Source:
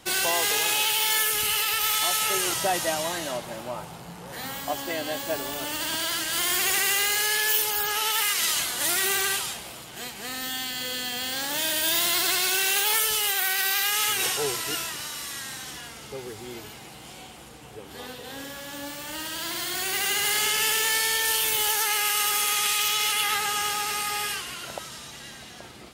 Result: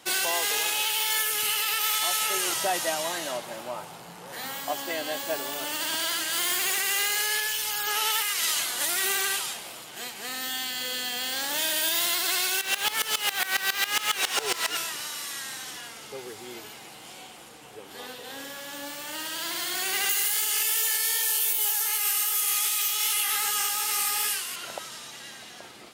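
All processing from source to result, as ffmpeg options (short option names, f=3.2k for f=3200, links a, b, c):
-filter_complex "[0:a]asettb=1/sr,asplit=3[a][b][c];[a]atrim=end=6.124[d];[b]atrim=start=6.12:end=6.8,asetpts=PTS-STARTPTS,afade=t=in:d=0.004:c=qsin,afade=t=out:st=0.676:d=0.004:c=qsin,bandreject=f=5.5k:w=26,aeval=exprs='clip(val(0),-1,0.0596)':c=same[e];[c]atrim=start=6.796[f];[d][e]acrossfade=d=0.004:c1=hsin:c2=qsin[g];[g][f]acrossfade=d=0.004:c1=qsin:c2=hsin,asettb=1/sr,asplit=3[h][i][j];[h]atrim=end=7.474[k];[i]atrim=start=7.47:end=7.87,asetpts=PTS-STARTPTS,afade=t=in:d=0.004:c=qsin,afade=t=out:st=0.396:d=0.004:c=qsin,acrossover=split=9500[l][m];[m]acompressor=threshold=-30dB:ratio=4:attack=1:release=60[n];[l][n]amix=inputs=2:normalize=0,highpass=f=1k:p=1,aeval=exprs='val(0)+0.00447*(sin(2*PI*60*n/s)+sin(2*PI*2*60*n/s)/2+sin(2*PI*3*60*n/s)/3+sin(2*PI*4*60*n/s)/4+sin(2*PI*5*60*n/s)/5)':c=same[o];[j]atrim=start=7.866[p];[k][o]acrossfade=d=0.004:c1=hsin:c2=qsin[q];[q][p]acrossfade=d=0.004:c1=qsin:c2=hsin,asettb=1/sr,asplit=3[r][s][t];[r]atrim=end=12.614[u];[s]atrim=start=12.61:end=14.77,asetpts=PTS-STARTPTS,afade=t=in:d=0.004:c=qsin,afade=t=out:st=2.156:d=0.004:c=qsin,asplit=2[v][w];[w]highpass=f=720:p=1,volume=26dB,asoftclip=type=tanh:threshold=-11dB[x];[v][x]amix=inputs=2:normalize=0,lowpass=f=3.7k:p=1,volume=-6dB,aeval=exprs='val(0)*pow(10,-19*if(lt(mod(-7.3*n/s,1),2*abs(-7.3)/1000),1-mod(-7.3*n/s,1)/(2*abs(-7.3)/1000),(mod(-7.3*n/s,1)-2*abs(-7.3)/1000)/(1-2*abs(-7.3)/1000))/20)':c=same[y];[t]atrim=start=14.766[z];[u][y]acrossfade=d=0.004:c1=hsin:c2=qsin[aa];[aa][z]acrossfade=d=0.004:c1=qsin:c2=hsin,asettb=1/sr,asplit=3[ab][ac][ad];[ab]atrim=end=20.094[ae];[ac]atrim=start=20.09:end=24.56,asetpts=PTS-STARTPTS,afade=t=in:d=0.004:c=qsin,afade=t=out:st=4.466:d=0.004:c=qsin,aemphasis=mode=production:type=50kf,flanger=delay=16:depth=5:speed=2.6[af];[ad]atrim=start=24.556[ag];[ae][af]acrossfade=d=0.004:c1=hsin:c2=qsin[ah];[ah][ag]acrossfade=d=0.004:c1=qsin:c2=hsin,highpass=f=350:p=1,alimiter=limit=-15dB:level=0:latency=1:release=372"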